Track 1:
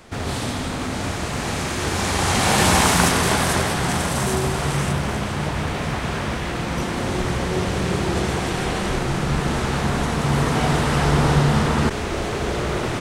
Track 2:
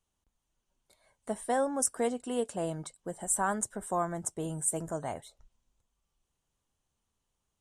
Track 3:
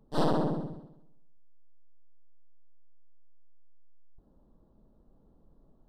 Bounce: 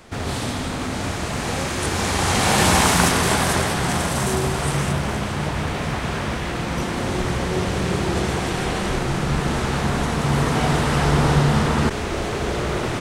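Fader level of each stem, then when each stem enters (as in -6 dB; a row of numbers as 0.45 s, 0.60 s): 0.0 dB, -5.5 dB, mute; 0.00 s, 0.00 s, mute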